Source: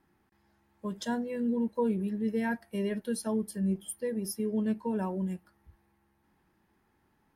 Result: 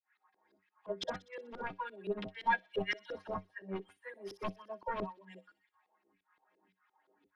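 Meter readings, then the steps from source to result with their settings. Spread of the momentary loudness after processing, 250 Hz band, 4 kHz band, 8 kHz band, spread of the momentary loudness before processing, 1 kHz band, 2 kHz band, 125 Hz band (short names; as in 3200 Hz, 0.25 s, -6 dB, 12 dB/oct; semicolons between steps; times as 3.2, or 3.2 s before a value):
15 LU, -17.5 dB, +2.0 dB, under -20 dB, 5 LU, +3.0 dB, +3.5 dB, -13.0 dB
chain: reverb removal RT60 0.6 s; LFO high-pass saw down 1.8 Hz 250–2800 Hz; limiter -27 dBFS, peak gain reduction 8 dB; dispersion lows, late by 51 ms, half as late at 510 Hz; wavefolder -35.5 dBFS; metallic resonator 93 Hz, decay 0.2 s, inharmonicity 0.008; LFO low-pass saw up 5.8 Hz 330–4300 Hz; on a send: thin delay 62 ms, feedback 68%, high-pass 4700 Hz, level -9 dB; on the sum: upward expander 1.5:1, over -56 dBFS; gain +13.5 dB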